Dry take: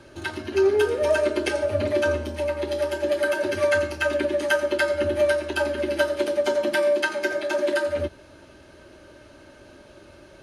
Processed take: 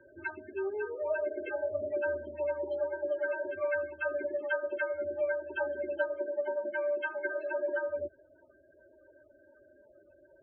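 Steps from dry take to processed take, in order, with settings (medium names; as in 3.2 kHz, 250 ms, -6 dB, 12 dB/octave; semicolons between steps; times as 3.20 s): loudest bins only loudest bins 16; gain riding within 5 dB 0.5 s; three-band isolator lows -15 dB, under 430 Hz, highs -12 dB, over 2.3 kHz; trim -7.5 dB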